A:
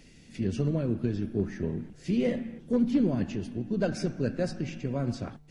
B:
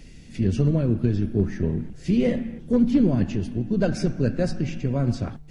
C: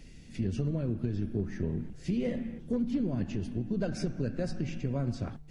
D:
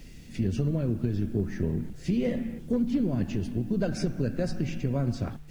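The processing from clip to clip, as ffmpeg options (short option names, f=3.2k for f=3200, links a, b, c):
-af "lowshelf=f=110:g=11,volume=4dB"
-af "acompressor=threshold=-22dB:ratio=4,volume=-5.5dB"
-af "acrusher=bits=10:mix=0:aa=0.000001,volume=4dB"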